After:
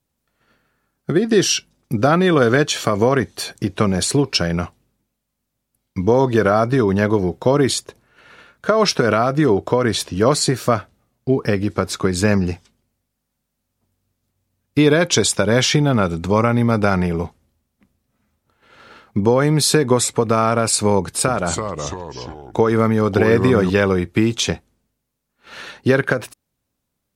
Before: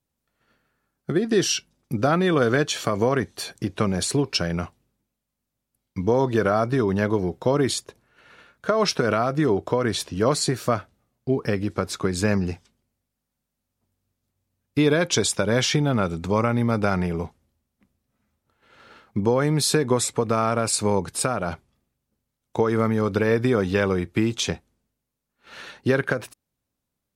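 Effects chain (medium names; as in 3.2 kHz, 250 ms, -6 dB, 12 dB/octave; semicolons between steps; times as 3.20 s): 20.99–23.70 s: ever faster or slower copies 284 ms, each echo -3 st, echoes 3, each echo -6 dB; trim +5.5 dB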